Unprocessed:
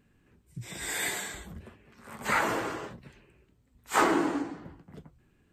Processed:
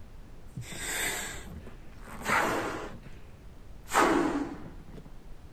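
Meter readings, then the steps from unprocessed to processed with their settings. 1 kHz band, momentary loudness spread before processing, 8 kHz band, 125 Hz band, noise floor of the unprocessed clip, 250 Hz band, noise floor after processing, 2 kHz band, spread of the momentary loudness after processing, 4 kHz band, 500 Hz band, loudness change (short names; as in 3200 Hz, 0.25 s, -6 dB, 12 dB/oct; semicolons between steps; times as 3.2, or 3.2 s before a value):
0.0 dB, 22 LU, 0.0 dB, +1.5 dB, -68 dBFS, 0.0 dB, -50 dBFS, 0.0 dB, 23 LU, 0.0 dB, 0.0 dB, 0.0 dB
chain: added noise brown -45 dBFS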